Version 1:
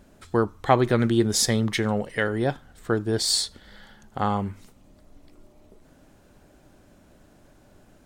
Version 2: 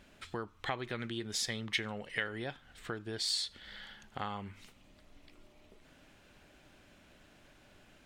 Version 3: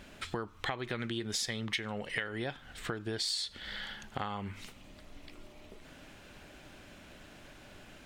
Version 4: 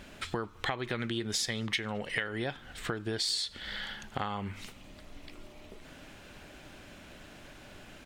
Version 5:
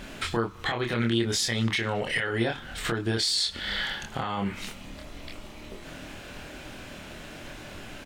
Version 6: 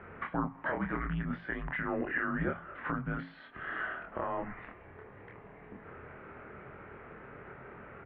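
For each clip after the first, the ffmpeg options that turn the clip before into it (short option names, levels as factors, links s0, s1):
-af "acompressor=threshold=0.0224:ratio=3,equalizer=f=2700:t=o:w=1.9:g=14,volume=0.376"
-af "acompressor=threshold=0.00794:ratio=3,volume=2.51"
-filter_complex "[0:a]asplit=2[s0][s1];[s1]adelay=215.7,volume=0.0355,highshelf=f=4000:g=-4.85[s2];[s0][s2]amix=inputs=2:normalize=0,volume=1.33"
-filter_complex "[0:a]alimiter=level_in=1.26:limit=0.0631:level=0:latency=1:release=15,volume=0.794,asplit=2[s0][s1];[s1]adelay=26,volume=0.708[s2];[s0][s2]amix=inputs=2:normalize=0,volume=2.24"
-af "bandreject=f=50:t=h:w=6,bandreject=f=100:t=h:w=6,bandreject=f=150:t=h:w=6,bandreject=f=200:t=h:w=6,bandreject=f=250:t=h:w=6,bandreject=f=300:t=h:w=6,bandreject=f=350:t=h:w=6,bandreject=f=400:t=h:w=6,bandreject=f=450:t=h:w=6,highpass=f=280:t=q:w=0.5412,highpass=f=280:t=q:w=1.307,lowpass=f=2100:t=q:w=0.5176,lowpass=f=2100:t=q:w=0.7071,lowpass=f=2100:t=q:w=1.932,afreqshift=-180,volume=0.708"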